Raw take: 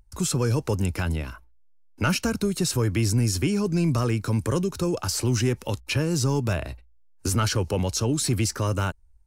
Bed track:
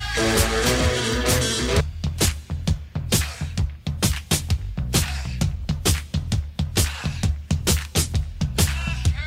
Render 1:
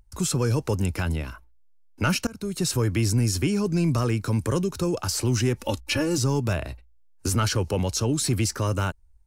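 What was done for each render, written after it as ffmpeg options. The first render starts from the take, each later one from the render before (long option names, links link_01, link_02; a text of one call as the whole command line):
ffmpeg -i in.wav -filter_complex "[0:a]asettb=1/sr,asplit=3[link_01][link_02][link_03];[link_01]atrim=end=5.594[link_04];[link_02]atrim=start=5.59:end=6.18,asetpts=PTS-STARTPTS,afade=type=in:duration=0.004:curve=qsin,afade=type=out:start_time=0.586:duration=0.004:curve=qsin,aecho=1:1:3.5:0.86,atrim=end_sample=26019[link_05];[link_03]atrim=start=6.176[link_06];[link_04][link_05]acrossfade=duration=0.004:curve1=hsin:curve2=qsin[link_07];[link_07][link_06]acrossfade=duration=0.004:curve1=qsin:curve2=hsin,asplit=2[link_08][link_09];[link_08]atrim=end=2.27,asetpts=PTS-STARTPTS,afade=type=out:start_time=2.266:duration=0.004:curve=hsin:silence=0.0707946[link_10];[link_09]atrim=start=2.27,asetpts=PTS-STARTPTS,afade=type=in:duration=0.4:silence=0.0707946[link_11];[link_10][link_11]concat=n=2:v=0:a=1" out.wav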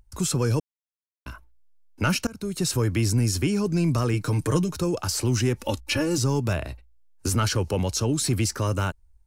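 ffmpeg -i in.wav -filter_complex "[0:a]asettb=1/sr,asplit=3[link_01][link_02][link_03];[link_01]atrim=end=4.134[link_04];[link_02]atrim=start=4.13:end=4.77,asetpts=PTS-STARTPTS,afade=type=in:duration=0.004:curve=qsin,afade=type=out:start_time=0.636:duration=0.004:curve=qsin,aecho=1:1:6.5:0.65,atrim=end_sample=28224[link_05];[link_03]atrim=start=4.766[link_06];[link_04][link_05]acrossfade=duration=0.004:curve1=hsin:curve2=qsin[link_07];[link_07][link_06]acrossfade=duration=0.004:curve1=qsin:curve2=hsin,asplit=3[link_08][link_09][link_10];[link_08]atrim=end=0.6,asetpts=PTS-STARTPTS,afade=type=out:start_time=0.596:duration=0.004:curve=hsin[link_11];[link_09]atrim=start=0.6:end=1.26,asetpts=PTS-STARTPTS,volume=0[link_12];[link_10]atrim=start=1.26,asetpts=PTS-STARTPTS,afade=type=in:duration=0.004:curve=hsin[link_13];[link_11][link_12][link_13]concat=n=3:v=0:a=1" out.wav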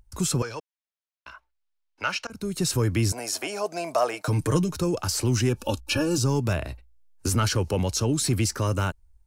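ffmpeg -i in.wav -filter_complex "[0:a]asettb=1/sr,asplit=3[link_01][link_02][link_03];[link_01]atrim=end=0.424[link_04];[link_02]atrim=start=0.42:end=2.3,asetpts=PTS-STARTPTS,afade=type=in:duration=0.004:curve=qsin,afade=type=out:start_time=1.876:duration=0.004:curve=qsin,acrossover=split=550 5900:gain=0.0891 1 0.0891[link_05][link_06][link_07];[link_05][link_06][link_07]amix=inputs=3:normalize=0[link_08];[link_03]atrim=start=2.296[link_09];[link_04][link_08]acrossfade=duration=0.004:curve1=hsin:curve2=qsin[link_10];[link_10][link_09]acrossfade=duration=0.004:curve1=qsin:curve2=hsin,asettb=1/sr,asplit=3[link_11][link_12][link_13];[link_11]atrim=end=3.124[link_14];[link_12]atrim=start=3.12:end=4.28,asetpts=PTS-STARTPTS,afade=type=in:duration=0.004:curve=qsin,afade=type=out:start_time=1.156:duration=0.004:curve=qsin,highpass=frequency=670:width_type=q:width=7.4[link_15];[link_13]atrim=start=4.276[link_16];[link_14][link_15]acrossfade=duration=0.004:curve1=hsin:curve2=qsin[link_17];[link_17][link_16]acrossfade=duration=0.004:curve1=qsin:curve2=hsin,asettb=1/sr,asplit=3[link_18][link_19][link_20];[link_18]atrim=end=5.494[link_21];[link_19]atrim=start=5.49:end=6.26,asetpts=PTS-STARTPTS,afade=type=in:duration=0.004:curve=qsin,afade=type=out:start_time=0.766:duration=0.004:curve=qsin,asuperstop=centerf=2000:order=12:qfactor=3.7[link_22];[link_20]atrim=start=6.256[link_23];[link_21][link_22]acrossfade=duration=0.004:curve1=hsin:curve2=qsin[link_24];[link_24][link_23]acrossfade=duration=0.004:curve1=qsin:curve2=hsin" out.wav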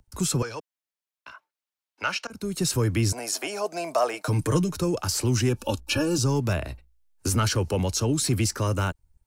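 ffmpeg -i in.wav -filter_complex "[0:a]acrossover=split=150|530|5300[link_01][link_02][link_03][link_04];[link_01]aeval=exprs='sgn(val(0))*max(abs(val(0))-0.00112,0)':channel_layout=same[link_05];[link_04]aphaser=in_gain=1:out_gain=1:delay=2.7:decay=0.37:speed=0.32:type=sinusoidal[link_06];[link_05][link_02][link_03][link_06]amix=inputs=4:normalize=0" out.wav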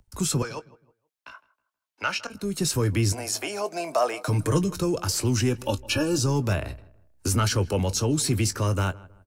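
ffmpeg -i in.wav -filter_complex "[0:a]asplit=2[link_01][link_02];[link_02]adelay=20,volume=-13dB[link_03];[link_01][link_03]amix=inputs=2:normalize=0,asplit=2[link_04][link_05];[link_05]adelay=159,lowpass=frequency=1700:poles=1,volume=-20dB,asplit=2[link_06][link_07];[link_07]adelay=159,lowpass=frequency=1700:poles=1,volume=0.34,asplit=2[link_08][link_09];[link_09]adelay=159,lowpass=frequency=1700:poles=1,volume=0.34[link_10];[link_04][link_06][link_08][link_10]amix=inputs=4:normalize=0" out.wav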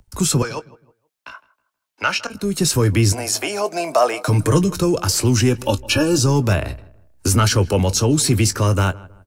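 ffmpeg -i in.wav -af "volume=7.5dB,alimiter=limit=-3dB:level=0:latency=1" out.wav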